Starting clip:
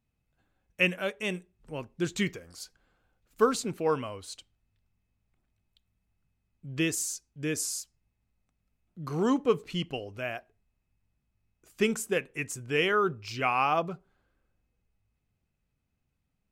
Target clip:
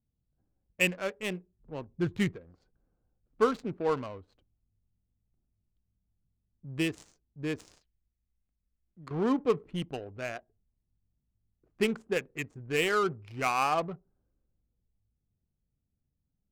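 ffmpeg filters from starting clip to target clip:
ffmpeg -i in.wav -filter_complex "[0:a]asettb=1/sr,asplit=3[link_01][link_02][link_03];[link_01]atrim=end=7.814[link_04];[link_02]atrim=start=7.81:end=9.11,asetpts=PTS-STARTPTS,afade=type=in:duration=0.004:curve=qsin,afade=type=out:start_time=1.296:duration=0.004:curve=qsin,equalizer=frequency=125:width_type=o:width=1:gain=-10,equalizer=frequency=250:width_type=o:width=1:gain=-4,equalizer=frequency=500:width_type=o:width=1:gain=-3,equalizer=frequency=1000:width_type=o:width=1:gain=-10,equalizer=frequency=2000:width_type=o:width=1:gain=10,equalizer=frequency=4000:width_type=o:width=1:gain=11,equalizer=frequency=8000:width_type=o:width=1:gain=-7[link_05];[link_03]atrim=start=9.106[link_06];[link_04][link_05]acrossfade=duration=0.004:curve1=hsin:curve2=qsin[link_07];[link_07][link_06]acrossfade=duration=0.004:curve1=qsin:curve2=hsin,adynamicsmooth=sensitivity=5:basefreq=540,asettb=1/sr,asplit=3[link_08][link_09][link_10];[link_08]atrim=end=1.874[link_11];[link_09]atrim=start=1.87:end=2.32,asetpts=PTS-STARTPTS,afade=type=in:duration=0.004:curve=qsin,afade=type=out:start_time=0.446:duration=0.004:curve=qsin,equalizer=frequency=100:width=1.1:gain=10.5[link_12];[link_10]atrim=start=2.316[link_13];[link_11][link_12]acrossfade=duration=0.004:curve1=hsin:curve2=qsin[link_14];[link_14][link_13]acrossfade=duration=0.004:curve1=qsin:curve2=hsin,volume=-1.5dB" out.wav

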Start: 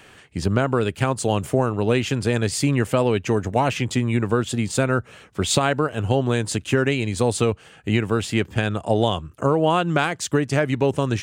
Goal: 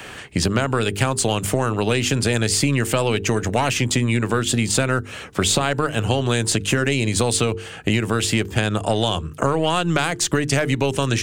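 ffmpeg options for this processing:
ffmpeg -i in.wav -filter_complex "[0:a]bandreject=frequency=50:width_type=h:width=6,bandreject=frequency=100:width_type=h:width=6,bandreject=frequency=150:width_type=h:width=6,bandreject=frequency=200:width_type=h:width=6,bandreject=frequency=250:width_type=h:width=6,bandreject=frequency=300:width_type=h:width=6,bandreject=frequency=350:width_type=h:width=6,bandreject=frequency=400:width_type=h:width=6,bandreject=frequency=450:width_type=h:width=6,asplit=2[link_01][link_02];[link_02]alimiter=limit=-14dB:level=0:latency=1,volume=0dB[link_03];[link_01][link_03]amix=inputs=2:normalize=0,aeval=exprs='0.841*(cos(1*acos(clip(val(0)/0.841,-1,1)))-cos(1*PI/2))+0.0596*(cos(3*acos(clip(val(0)/0.841,-1,1)))-cos(3*PI/2))+0.015*(cos(6*acos(clip(val(0)/0.841,-1,1)))-cos(6*PI/2))':channel_layout=same,acrossover=split=91|1600|5000[link_04][link_05][link_06][link_07];[link_04]acompressor=threshold=-40dB:ratio=4[link_08];[link_05]acompressor=threshold=-28dB:ratio=4[link_09];[link_06]acompressor=threshold=-34dB:ratio=4[link_10];[link_07]acompressor=threshold=-30dB:ratio=4[link_11];[link_08][link_09][link_10][link_11]amix=inputs=4:normalize=0,volume=8dB" out.wav

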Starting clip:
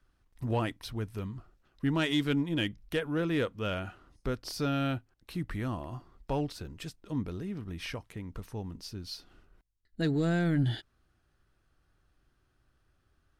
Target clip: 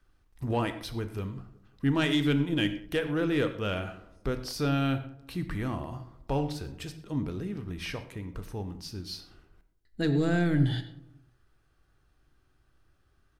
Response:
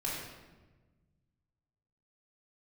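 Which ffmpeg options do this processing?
-filter_complex "[0:a]asplit=2[link_01][link_02];[link_02]adelay=185,lowpass=frequency=1100:poles=1,volume=-19dB,asplit=2[link_03][link_04];[link_04]adelay=185,lowpass=frequency=1100:poles=1,volume=0.42,asplit=2[link_05][link_06];[link_06]adelay=185,lowpass=frequency=1100:poles=1,volume=0.42[link_07];[link_01][link_03][link_05][link_07]amix=inputs=4:normalize=0,asplit=2[link_08][link_09];[1:a]atrim=start_sample=2205,atrim=end_sample=6174[link_10];[link_09][link_10]afir=irnorm=-1:irlink=0,volume=-9dB[link_11];[link_08][link_11]amix=inputs=2:normalize=0"

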